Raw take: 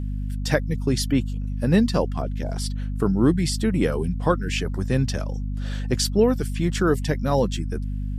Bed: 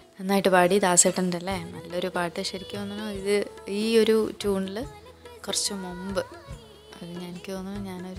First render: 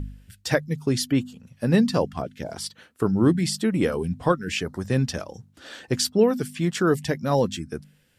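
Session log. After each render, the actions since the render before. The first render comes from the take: de-hum 50 Hz, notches 5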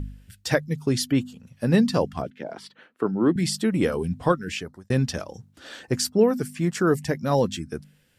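2.30–3.36 s: three-band isolator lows -23 dB, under 180 Hz, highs -18 dB, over 3.3 kHz; 4.37–4.90 s: fade out; 5.83–7.15 s: peaking EQ 3.4 kHz -8 dB 0.66 oct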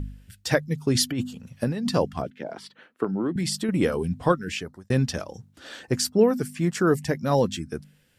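0.95–1.89 s: compressor with a negative ratio -25 dBFS; 3.04–3.69 s: compression, threshold -22 dBFS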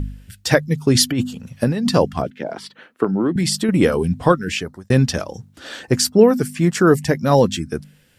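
trim +7.5 dB; peak limiter -1 dBFS, peak gain reduction 1.5 dB

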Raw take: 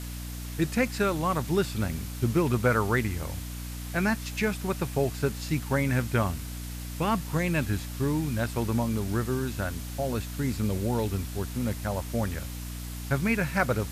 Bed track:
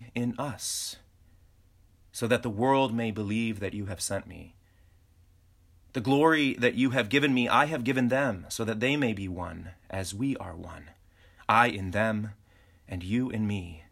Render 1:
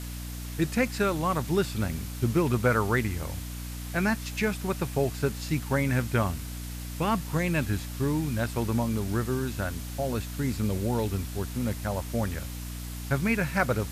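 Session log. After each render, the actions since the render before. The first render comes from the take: no audible change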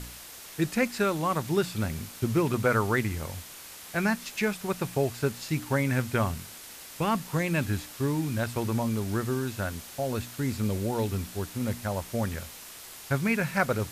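de-hum 60 Hz, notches 5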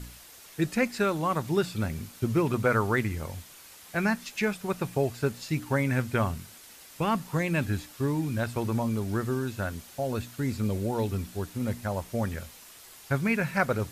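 noise reduction 6 dB, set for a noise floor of -45 dBFS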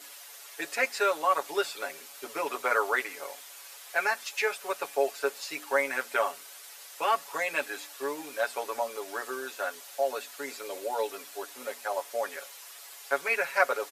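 high-pass 480 Hz 24 dB/octave; comb 7.1 ms, depth 94%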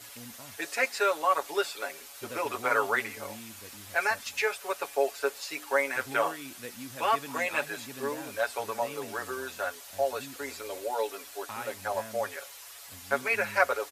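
add bed track -18 dB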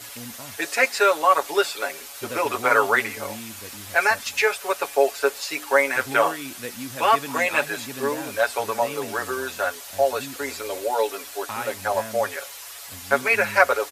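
trim +8 dB; peak limiter -2 dBFS, peak gain reduction 1.5 dB

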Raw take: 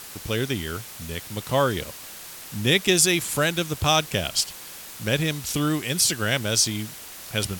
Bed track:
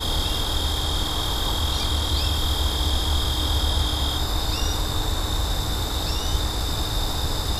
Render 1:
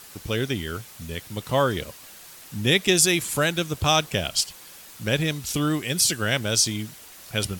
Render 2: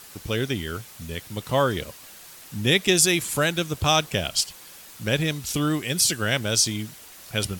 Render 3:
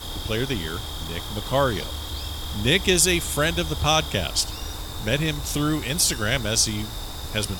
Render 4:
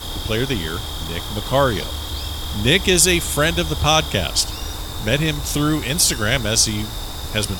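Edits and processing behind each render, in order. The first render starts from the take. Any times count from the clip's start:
noise reduction 6 dB, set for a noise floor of -41 dBFS
no audible change
add bed track -9 dB
trim +4.5 dB; peak limiter -1 dBFS, peak gain reduction 2 dB

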